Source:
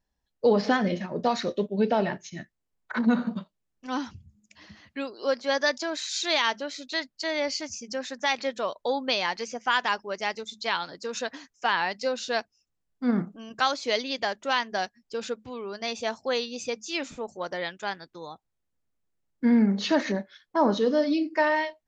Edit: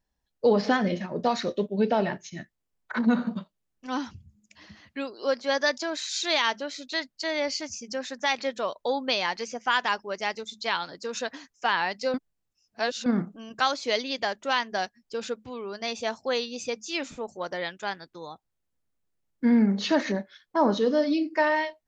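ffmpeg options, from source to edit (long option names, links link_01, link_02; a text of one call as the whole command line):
ffmpeg -i in.wav -filter_complex "[0:a]asplit=3[link_01][link_02][link_03];[link_01]atrim=end=12.142[link_04];[link_02]atrim=start=12.138:end=13.062,asetpts=PTS-STARTPTS,areverse[link_05];[link_03]atrim=start=13.058[link_06];[link_04][link_05]acrossfade=duration=0.004:curve1=hsin:curve2=hsin[link_07];[link_07][link_06]acrossfade=duration=0.004:curve1=hsin:curve2=hsin" out.wav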